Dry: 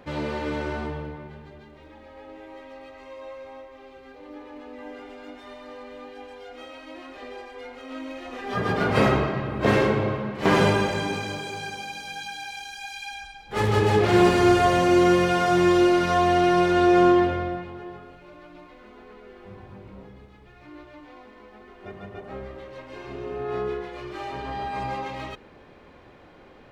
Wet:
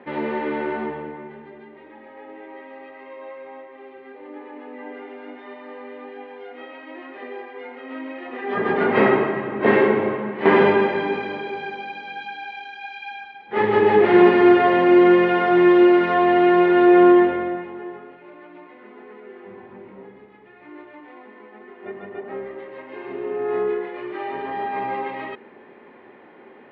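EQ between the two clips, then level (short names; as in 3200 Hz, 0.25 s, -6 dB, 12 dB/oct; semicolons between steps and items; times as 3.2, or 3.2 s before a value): speaker cabinet 220–3100 Hz, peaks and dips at 230 Hz +8 dB, 390 Hz +9 dB, 880 Hz +6 dB, 1900 Hz +8 dB; 0.0 dB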